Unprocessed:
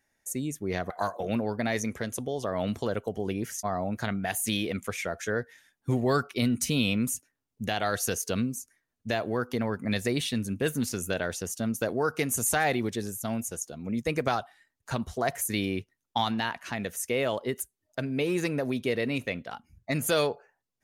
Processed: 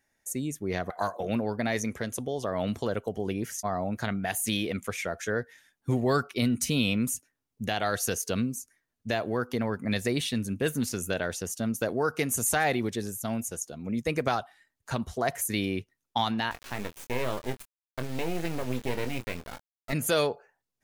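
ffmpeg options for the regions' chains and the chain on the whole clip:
-filter_complex "[0:a]asettb=1/sr,asplit=3[s0][s1][s2];[s0]atrim=end=16.514[s3];[s1]atrim=start=16.51:end=19.93,asetpts=PTS-STARTPTS,afade=t=in:d=0.004:c=qsin,afade=t=out:st=3.416:d=0.004:c=qsin,lowpass=f=2800:p=1,acrusher=bits=4:dc=4:mix=0:aa=0.000001,asplit=2[s4][s5];[s5]adelay=24,volume=0.355[s6];[s4][s6]amix=inputs=2:normalize=0,atrim=end_sample=150822[s7];[s2]atrim=start=19.926[s8];[s3][s7]acrossfade=d=0.004:c1=hsin:c2=qsin[s9];[s9][s8]acrossfade=d=0.004:c1=qsin:c2=hsin"

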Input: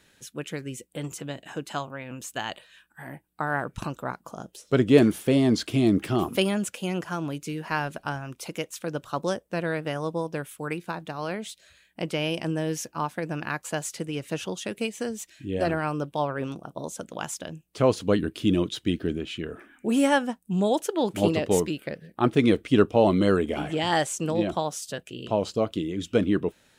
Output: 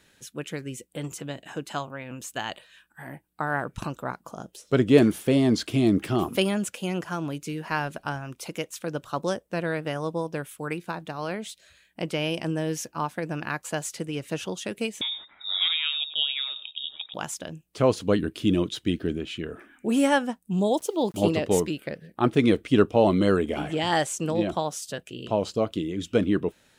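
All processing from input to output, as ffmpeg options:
-filter_complex "[0:a]asettb=1/sr,asplit=3[s0][s1][s2];[s0]atrim=end=15.014[s3];[s1]atrim=start=15.01:end=17.14,asetpts=PTS-STARTPTS,afade=t=in:d=0.004:c=qsin,afade=t=out:st=2.126:d=0.004:c=qsin,aecho=1:1:98:0.211,atrim=end_sample=93933,lowpass=f=3300:t=q:w=0.5098,lowpass=f=3300:t=q:w=0.6013,lowpass=f=3300:t=q:w=0.9,lowpass=f=3300:t=q:w=2.563,afreqshift=-3900[s4];[s2]atrim=start=17.136[s5];[s3][s4]acrossfade=d=0.004:c1=hsin:c2=qsin[s6];[s6][s5]acrossfade=d=0.004:c1=qsin:c2=hsin,asettb=1/sr,asplit=3[s7][s8][s9];[s7]atrim=end=20.594[s10];[s8]atrim=start=20.59:end=21.22,asetpts=PTS-STARTPTS,afade=t=in:d=0.004:c=qsin,afade=t=out:st=0.626:d=0.004:c=qsin,asuperstop=centerf=1800:order=4:qfactor=0.94,aeval=exprs='val(0)*gte(abs(val(0)),0.00422)':c=same[s11];[s9]atrim=start=21.216[s12];[s10][s11]acrossfade=d=0.004:c1=hsin:c2=qsin[s13];[s13][s12]acrossfade=d=0.004:c1=qsin:c2=hsin"

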